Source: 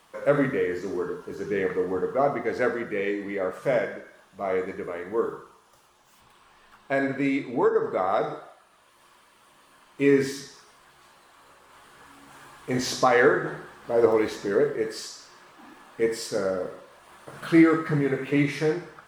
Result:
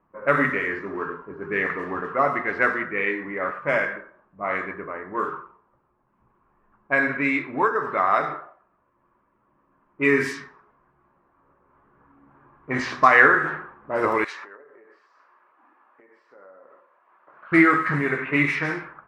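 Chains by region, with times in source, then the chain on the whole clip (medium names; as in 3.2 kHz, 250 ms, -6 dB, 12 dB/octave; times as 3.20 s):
14.24–17.52 s: treble shelf 3 kHz +10 dB + compression 20:1, threshold -33 dBFS + band-pass 690–7400 Hz
whole clip: level-controlled noise filter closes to 380 Hz, open at -19 dBFS; high-order bell 1.6 kHz +11 dB; band-stop 460 Hz, Q 12; trim -1 dB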